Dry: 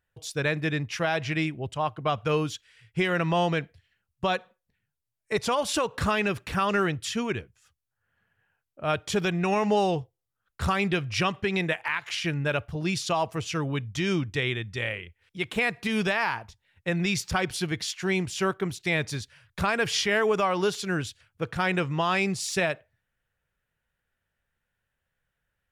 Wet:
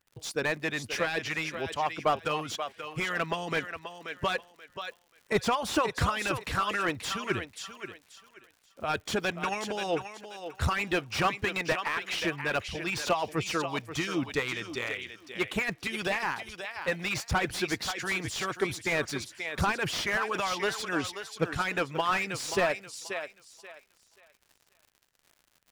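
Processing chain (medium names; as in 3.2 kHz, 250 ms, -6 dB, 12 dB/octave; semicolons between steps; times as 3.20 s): harmonic-percussive split harmonic -16 dB; crackle 99 per s -49 dBFS; thinning echo 532 ms, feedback 25%, high-pass 310 Hz, level -9 dB; slew-rate limiter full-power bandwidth 85 Hz; trim +2.5 dB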